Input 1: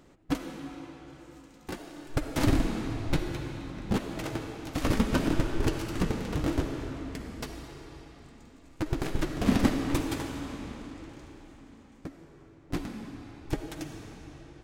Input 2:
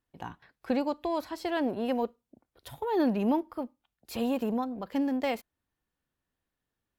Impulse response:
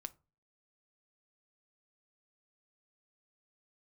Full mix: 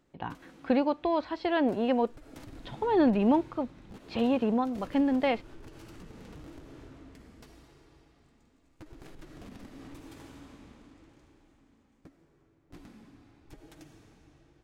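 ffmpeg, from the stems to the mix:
-filter_complex "[0:a]acompressor=threshold=-27dB:ratio=6,alimiter=level_in=1.5dB:limit=-24dB:level=0:latency=1:release=45,volume=-1.5dB,volume=-13dB[link_01];[1:a]lowpass=frequency=4000:width=0.5412,lowpass=frequency=4000:width=1.3066,volume=3dB[link_02];[link_01][link_02]amix=inputs=2:normalize=0"

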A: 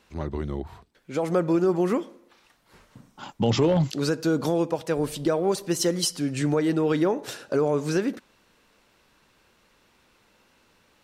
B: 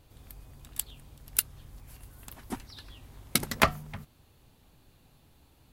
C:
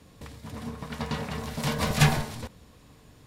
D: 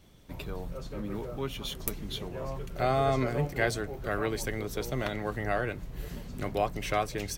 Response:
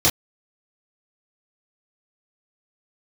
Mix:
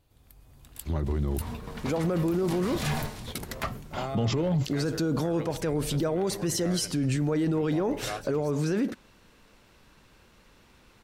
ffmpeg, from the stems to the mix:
-filter_complex "[0:a]lowshelf=frequency=180:gain=10,alimiter=limit=-15dB:level=0:latency=1,adelay=750,volume=2dB[link_01];[1:a]dynaudnorm=framelen=100:gausssize=11:maxgain=12.5dB,volume=-8dB[link_02];[2:a]acrusher=bits=9:mode=log:mix=0:aa=0.000001,adelay=850,volume=-3.5dB[link_03];[3:a]adelay=1150,volume=-7.5dB[link_04];[link_01][link_02][link_03][link_04]amix=inputs=4:normalize=0,alimiter=limit=-20dB:level=0:latency=1:release=19"

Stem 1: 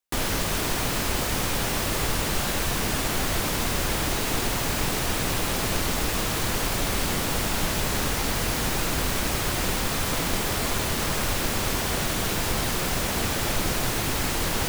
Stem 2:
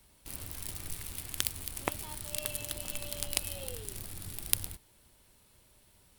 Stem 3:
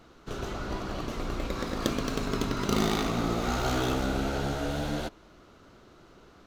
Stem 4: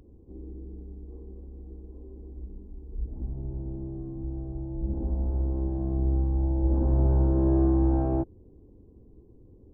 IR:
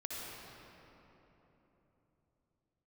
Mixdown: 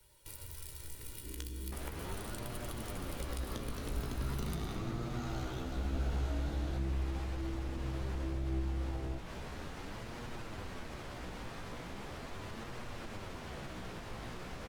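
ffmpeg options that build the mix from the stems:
-filter_complex "[0:a]alimiter=limit=-19dB:level=0:latency=1:release=130,aemphasis=mode=reproduction:type=75fm,adelay=1600,volume=-10dB[link_01];[1:a]aecho=1:1:2.1:0.78,acompressor=threshold=-40dB:ratio=3,volume=-2.5dB,asplit=2[link_02][link_03];[link_03]volume=-4.5dB[link_04];[2:a]adelay=1700,volume=-5.5dB[link_05];[3:a]acompressor=threshold=-30dB:ratio=6,adelay=950,volume=0dB[link_06];[4:a]atrim=start_sample=2205[link_07];[link_04][link_07]afir=irnorm=-1:irlink=0[link_08];[link_01][link_02][link_05][link_06][link_08]amix=inputs=5:normalize=0,acrossover=split=170[link_09][link_10];[link_10]acompressor=threshold=-37dB:ratio=5[link_11];[link_09][link_11]amix=inputs=2:normalize=0,flanger=delay=8.3:depth=9.1:regen=42:speed=0.39:shape=sinusoidal"

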